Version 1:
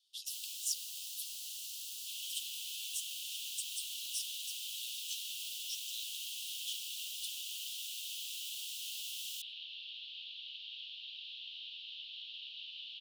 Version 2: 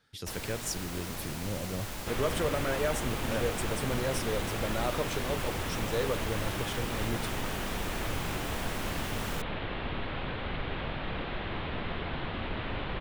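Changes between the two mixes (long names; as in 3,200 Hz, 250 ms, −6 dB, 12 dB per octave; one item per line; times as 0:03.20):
second sound: add high-frequency loss of the air 71 metres
master: remove Butterworth high-pass 2,800 Hz 96 dB per octave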